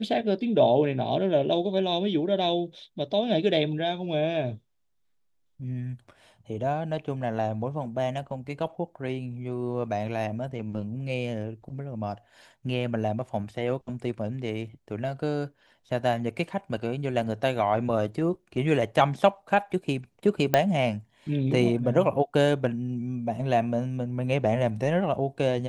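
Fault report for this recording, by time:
20.54 s: pop -7 dBFS

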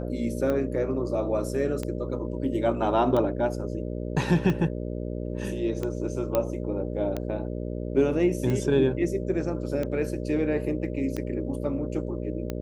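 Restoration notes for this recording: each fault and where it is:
buzz 60 Hz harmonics 10 -32 dBFS
tick 45 rpm -17 dBFS
6.35 s: pop -11 dBFS

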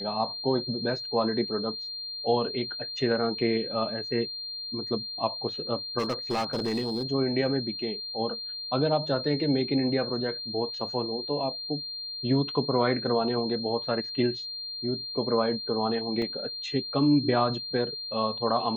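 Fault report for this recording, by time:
whine 4.2 kHz -34 dBFS
5.98–7.06 s: clipped -24 dBFS
16.22 s: dropout 2.2 ms

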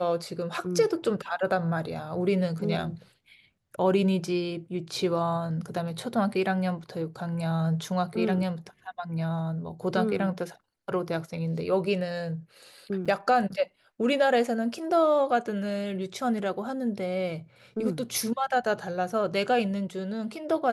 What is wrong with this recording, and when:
13.05–13.06 s: dropout 6.2 ms

